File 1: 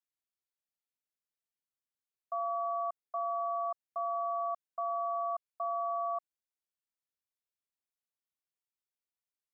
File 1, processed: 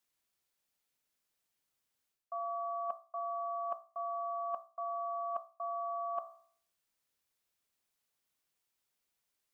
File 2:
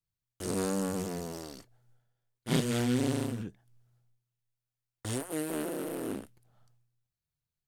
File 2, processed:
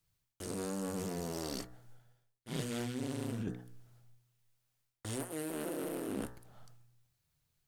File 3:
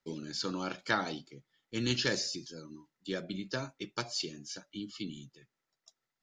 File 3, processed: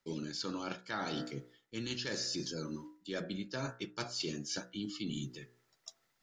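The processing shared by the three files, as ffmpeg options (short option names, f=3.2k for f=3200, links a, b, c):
-af "bandreject=f=61.06:t=h:w=4,bandreject=f=122.12:t=h:w=4,bandreject=f=183.18:t=h:w=4,bandreject=f=244.24:t=h:w=4,bandreject=f=305.3:t=h:w=4,bandreject=f=366.36:t=h:w=4,bandreject=f=427.42:t=h:w=4,bandreject=f=488.48:t=h:w=4,bandreject=f=549.54:t=h:w=4,bandreject=f=610.6:t=h:w=4,bandreject=f=671.66:t=h:w=4,bandreject=f=732.72:t=h:w=4,bandreject=f=793.78:t=h:w=4,bandreject=f=854.84:t=h:w=4,bandreject=f=915.9:t=h:w=4,bandreject=f=976.96:t=h:w=4,bandreject=f=1.03802k:t=h:w=4,bandreject=f=1.09908k:t=h:w=4,bandreject=f=1.16014k:t=h:w=4,bandreject=f=1.2212k:t=h:w=4,bandreject=f=1.28226k:t=h:w=4,bandreject=f=1.34332k:t=h:w=4,bandreject=f=1.40438k:t=h:w=4,bandreject=f=1.46544k:t=h:w=4,bandreject=f=1.5265k:t=h:w=4,bandreject=f=1.58756k:t=h:w=4,bandreject=f=1.64862k:t=h:w=4,bandreject=f=1.70968k:t=h:w=4,bandreject=f=1.77074k:t=h:w=4,bandreject=f=1.8318k:t=h:w=4,bandreject=f=1.89286k:t=h:w=4,bandreject=f=1.95392k:t=h:w=4,areverse,acompressor=threshold=-46dB:ratio=10,areverse,volume=10.5dB"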